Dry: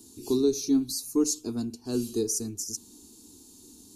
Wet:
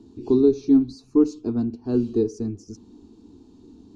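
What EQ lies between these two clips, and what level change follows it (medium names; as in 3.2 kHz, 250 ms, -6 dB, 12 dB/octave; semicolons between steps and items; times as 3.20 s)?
tape spacing loss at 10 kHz 44 dB; +8.5 dB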